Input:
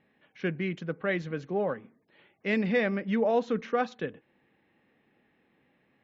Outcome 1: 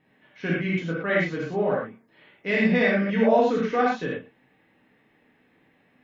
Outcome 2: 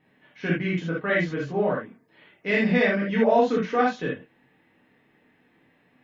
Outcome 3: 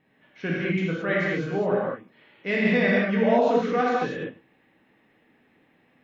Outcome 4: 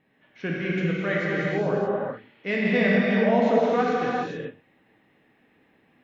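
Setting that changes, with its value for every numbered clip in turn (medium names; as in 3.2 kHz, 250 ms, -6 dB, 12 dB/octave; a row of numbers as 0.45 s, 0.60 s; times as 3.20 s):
gated-style reverb, gate: 140 ms, 100 ms, 250 ms, 460 ms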